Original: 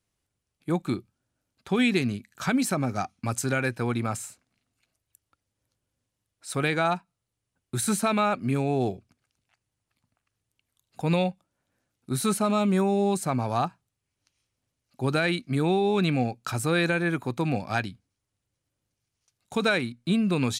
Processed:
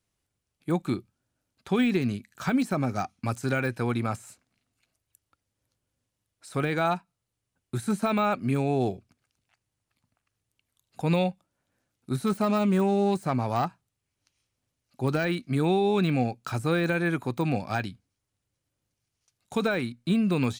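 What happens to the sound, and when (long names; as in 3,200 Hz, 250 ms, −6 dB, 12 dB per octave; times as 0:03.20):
0:12.26–0:15.25: phase distortion by the signal itself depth 0.067 ms
whole clip: de-essing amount 95%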